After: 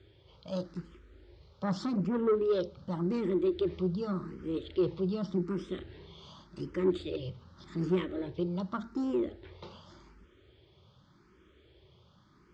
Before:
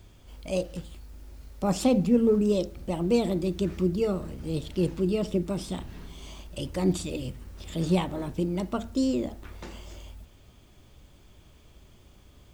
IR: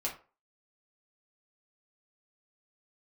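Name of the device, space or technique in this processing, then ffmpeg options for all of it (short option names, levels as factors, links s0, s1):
barber-pole phaser into a guitar amplifier: -filter_complex "[0:a]asplit=2[s0][s1];[s1]afreqshift=0.86[s2];[s0][s2]amix=inputs=2:normalize=1,asoftclip=type=tanh:threshold=0.0708,highpass=100,equalizer=f=250:t=q:w=4:g=-6,equalizer=f=370:t=q:w=4:g=6,equalizer=f=710:t=q:w=4:g=-10,equalizer=f=1300:t=q:w=4:g=4,equalizer=f=2600:t=q:w=4:g=-7,lowpass=f=4500:w=0.5412,lowpass=f=4500:w=1.3066"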